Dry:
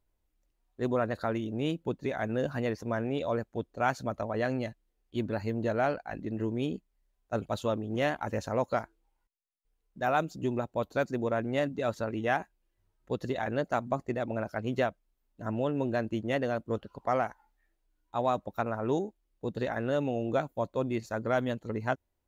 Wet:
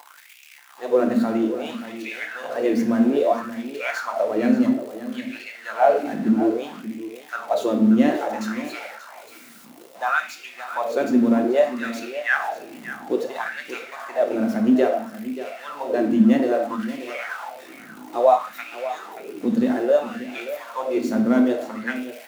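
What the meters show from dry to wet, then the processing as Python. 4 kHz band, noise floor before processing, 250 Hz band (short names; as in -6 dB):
+6.5 dB, -78 dBFS, +13.0 dB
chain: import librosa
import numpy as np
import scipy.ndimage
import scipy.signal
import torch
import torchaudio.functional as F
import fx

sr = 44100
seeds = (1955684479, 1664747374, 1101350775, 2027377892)

y = x + 0.5 * 10.0 ** (-38.0 / 20.0) * np.sign(x)
y = scipy.signal.sosfilt(scipy.signal.butter(2, 92.0, 'highpass', fs=sr, output='sos'), y)
y = fx.peak_eq(y, sr, hz=250.0, db=4.5, octaves=0.37)
y = fx.room_shoebox(y, sr, seeds[0], volume_m3=270.0, walls='mixed', distance_m=0.84)
y = fx.filter_lfo_highpass(y, sr, shape='sine', hz=0.6, low_hz=220.0, high_hz=2500.0, q=4.9)
y = y + 10.0 ** (-13.0 / 20.0) * np.pad(y, (int(582 * sr / 1000.0), 0))[:len(y)]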